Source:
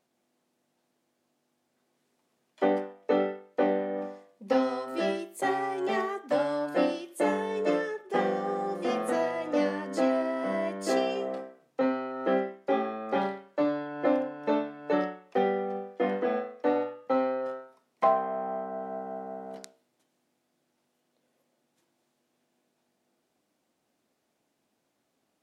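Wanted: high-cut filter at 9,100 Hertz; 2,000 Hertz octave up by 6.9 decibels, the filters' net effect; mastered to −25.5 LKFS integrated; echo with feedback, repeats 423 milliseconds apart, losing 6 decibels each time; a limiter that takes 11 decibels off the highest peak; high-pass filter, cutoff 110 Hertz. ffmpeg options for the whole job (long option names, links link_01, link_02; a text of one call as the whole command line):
ffmpeg -i in.wav -af "highpass=110,lowpass=9100,equalizer=frequency=2000:width_type=o:gain=8,alimiter=limit=-20.5dB:level=0:latency=1,aecho=1:1:423|846|1269|1692|2115|2538:0.501|0.251|0.125|0.0626|0.0313|0.0157,volume=5dB" out.wav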